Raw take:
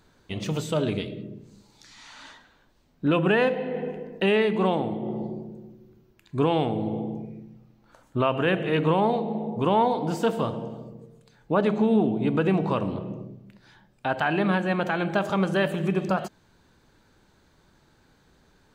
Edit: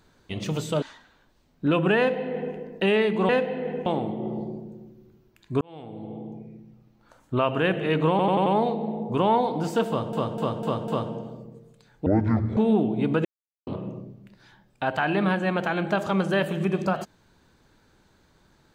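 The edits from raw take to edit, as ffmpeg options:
ffmpeg -i in.wav -filter_complex "[0:a]asplit=17[link_01][link_02][link_03][link_04][link_05][link_06][link_07][link_08][link_09][link_10][link_11][link_12][link_13][link_14][link_15][link_16][link_17];[link_01]atrim=end=0.822[link_18];[link_02]atrim=start=2.218:end=4.692[link_19];[link_03]atrim=start=3.378:end=3.952[link_20];[link_04]atrim=start=4.688:end=6.44,asetpts=PTS-STARTPTS,afade=type=out:start_time=1.748:duration=0.004:curve=hsin[link_21];[link_05]atrim=start=6.44:end=9.022,asetpts=PTS-STARTPTS,afade=type=in:duration=1.94:curve=qsin[link_22];[link_06]atrim=start=8.928:end=9.022[link_23];[link_07]atrim=start=8.928:end=9.022[link_24];[link_08]atrim=start=8.928:end=9.022[link_25];[link_09]atrim=start=8.928:end=10.602[link_26];[link_10]atrim=start=10.348:end=10.602[link_27];[link_11]atrim=start=10.348:end=10.602[link_28];[link_12]atrim=start=10.348:end=10.602[link_29];[link_13]atrim=start=10.348:end=11.534[link_30];[link_14]atrim=start=11.53:end=11.8,asetpts=PTS-STARTPTS,asetrate=23373,aresample=44100,atrim=end_sample=22466,asetpts=PTS-STARTPTS[link_31];[link_15]atrim=start=11.796:end=12.48,asetpts=PTS-STARTPTS,afade=type=out:start_time=0.68:duration=0.004:curve=hsin[link_32];[link_16]atrim=start=12.48:end=12.9,asetpts=PTS-STARTPTS,volume=0[link_33];[link_17]atrim=start=12.9,asetpts=PTS-STARTPTS,afade=type=in:duration=0.004:curve=hsin[link_34];[link_18][link_19]acrossfade=duration=0.004:curve1=hsin:curve2=hsin[link_35];[link_35][link_20]acrossfade=duration=0.004:curve1=hsin:curve2=hsin[link_36];[link_21][link_22]concat=n=2:v=0:a=1[link_37];[link_36][link_37]acrossfade=duration=0.004:curve1=hsin:curve2=hsin[link_38];[link_38][link_23]acrossfade=duration=0.004:curve1=hsin:curve2=hsin[link_39];[link_39][link_24]acrossfade=duration=0.004:curve1=hsin:curve2=hsin[link_40];[link_40][link_25]acrossfade=duration=0.004:curve1=hsin:curve2=hsin[link_41];[link_41][link_26]acrossfade=duration=0.004:curve1=hsin:curve2=hsin[link_42];[link_42][link_27]acrossfade=duration=0.004:curve1=hsin:curve2=hsin[link_43];[link_43][link_28]acrossfade=duration=0.004:curve1=hsin:curve2=hsin[link_44];[link_44][link_29]acrossfade=duration=0.004:curve1=hsin:curve2=hsin[link_45];[link_45][link_30]acrossfade=duration=0.004:curve1=hsin:curve2=hsin[link_46];[link_46][link_31]acrossfade=duration=0.004:curve1=hsin:curve2=hsin[link_47];[link_32][link_33][link_34]concat=n=3:v=0:a=1[link_48];[link_47][link_48]acrossfade=duration=0.004:curve1=hsin:curve2=hsin" out.wav

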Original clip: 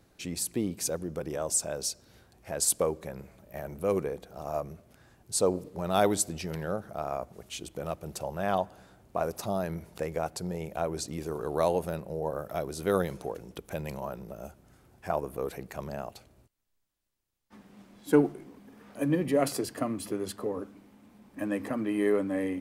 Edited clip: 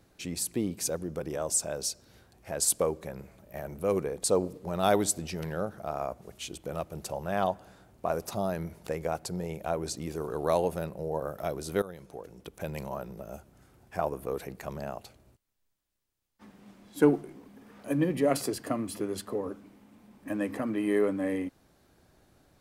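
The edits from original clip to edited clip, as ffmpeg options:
ffmpeg -i in.wav -filter_complex "[0:a]asplit=3[link_01][link_02][link_03];[link_01]atrim=end=4.242[link_04];[link_02]atrim=start=5.348:end=12.93,asetpts=PTS-STARTPTS,afade=type=out:start_time=7.578:duration=0.004:curve=hsin:silence=0.105925[link_05];[link_03]atrim=start=12.93,asetpts=PTS-STARTPTS,afade=type=in:duration=0.94:silence=0.105925[link_06];[link_05][link_06]concat=n=2:v=0:a=1[link_07];[link_04][link_07]acrossfade=duration=0.004:curve1=hsin:curve2=hsin" out.wav

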